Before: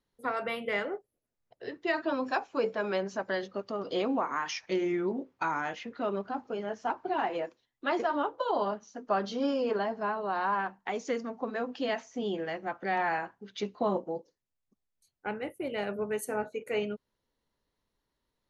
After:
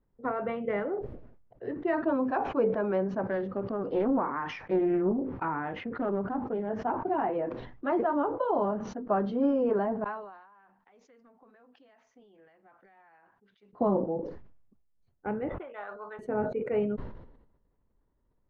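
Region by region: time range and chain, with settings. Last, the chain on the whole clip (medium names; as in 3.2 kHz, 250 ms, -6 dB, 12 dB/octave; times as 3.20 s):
3.24–6.69 s: peaking EQ 660 Hz -4.5 dB 0.22 oct + loudspeaker Doppler distortion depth 0.29 ms
10.04–13.73 s: pre-emphasis filter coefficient 0.97 + compression, threshold -55 dBFS
15.49–16.19 s: resonant high-pass 1.2 kHz, resonance Q 2.1 + treble shelf 4.8 kHz -9.5 dB + decimation joined by straight lines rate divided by 8×
whole clip: low-pass 1.6 kHz 12 dB/octave; tilt EQ -2.5 dB/octave; decay stretcher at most 61 dB/s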